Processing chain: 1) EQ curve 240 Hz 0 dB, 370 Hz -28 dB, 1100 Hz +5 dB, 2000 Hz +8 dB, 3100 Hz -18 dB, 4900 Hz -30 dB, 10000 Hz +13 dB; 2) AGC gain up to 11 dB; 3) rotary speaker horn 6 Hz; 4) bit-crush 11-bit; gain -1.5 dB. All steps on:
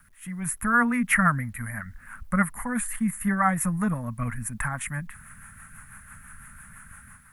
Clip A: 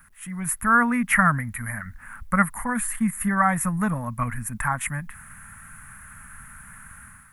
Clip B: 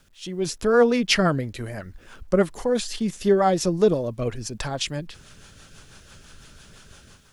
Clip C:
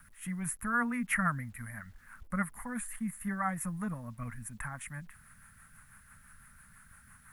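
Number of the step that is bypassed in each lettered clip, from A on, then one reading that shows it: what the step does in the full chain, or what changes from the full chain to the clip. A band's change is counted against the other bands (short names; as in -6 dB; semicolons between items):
3, 1 kHz band +1.5 dB; 1, 500 Hz band +20.0 dB; 2, momentary loudness spread change -10 LU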